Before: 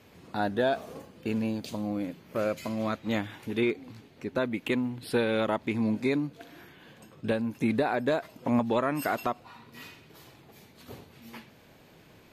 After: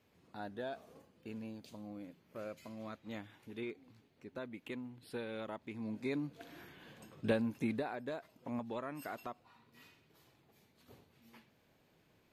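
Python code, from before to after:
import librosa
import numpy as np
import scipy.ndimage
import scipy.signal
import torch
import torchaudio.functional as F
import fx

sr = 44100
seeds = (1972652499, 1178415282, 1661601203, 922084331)

y = fx.gain(x, sr, db=fx.line((5.76, -16.0), (6.51, -4.0), (7.41, -4.0), (7.98, -15.0)))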